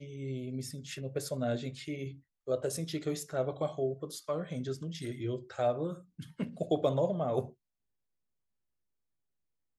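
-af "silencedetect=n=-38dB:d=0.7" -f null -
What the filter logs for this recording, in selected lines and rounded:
silence_start: 7.46
silence_end: 9.79 | silence_duration: 2.33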